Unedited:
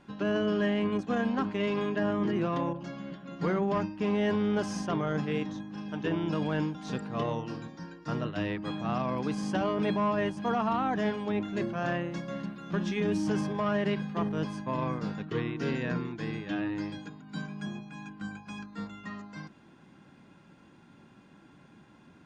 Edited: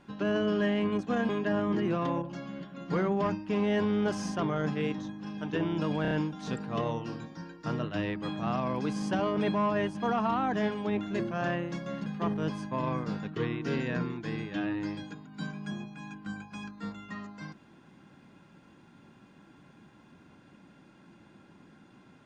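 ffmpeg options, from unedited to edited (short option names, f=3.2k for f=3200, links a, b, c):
-filter_complex "[0:a]asplit=6[a][b][c][d][e][f];[a]atrim=end=1.292[g];[b]atrim=start=1.798:end=6.562[h];[c]atrim=start=6.528:end=6.562[i];[d]atrim=start=6.528:end=6.562[j];[e]atrim=start=6.528:end=12.482[k];[f]atrim=start=14.008[l];[g][h]acrossfade=d=0.004:c1=hsin:c2=hsin[m];[m][i]acrossfade=d=0.004:c1=hsin:c2=hsin[n];[n][j]acrossfade=d=0.004:c1=hsin:c2=hsin[o];[o][k]acrossfade=d=0.004:c1=hsin:c2=hsin[p];[p][l]acrossfade=d=0.004:c1=hsin:c2=hsin"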